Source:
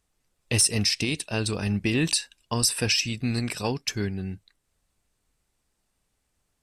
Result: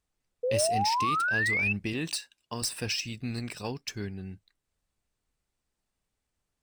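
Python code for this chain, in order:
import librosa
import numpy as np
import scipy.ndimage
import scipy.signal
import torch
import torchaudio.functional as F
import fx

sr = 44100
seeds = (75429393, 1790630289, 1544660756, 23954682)

y = scipy.ndimage.median_filter(x, 3, mode='constant')
y = fx.spec_paint(y, sr, seeds[0], shape='rise', start_s=0.43, length_s=1.3, low_hz=480.0, high_hz=2700.0, level_db=-20.0)
y = fx.highpass(y, sr, hz=160.0, slope=6, at=(1.93, 2.62))
y = y * 10.0 ** (-7.5 / 20.0)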